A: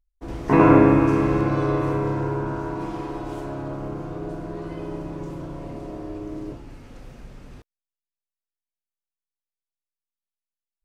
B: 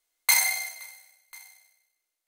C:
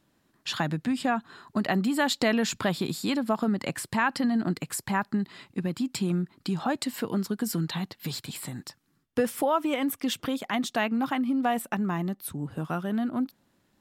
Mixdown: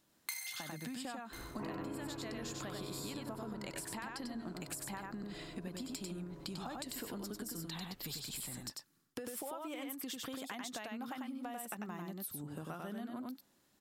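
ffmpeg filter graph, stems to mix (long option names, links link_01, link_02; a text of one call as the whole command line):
ffmpeg -i stem1.wav -i stem2.wav -i stem3.wav -filter_complex "[0:a]adelay=1100,volume=-18dB[link_01];[1:a]highpass=1400,volume=-8dB[link_02];[2:a]bass=frequency=250:gain=-5,treble=frequency=4000:gain=7,acompressor=threshold=-30dB:ratio=6,volume=-5.5dB,asplit=2[link_03][link_04];[link_04]volume=-3.5dB,aecho=0:1:95:1[link_05];[link_01][link_02][link_03][link_05]amix=inputs=4:normalize=0,acompressor=threshold=-40dB:ratio=6" out.wav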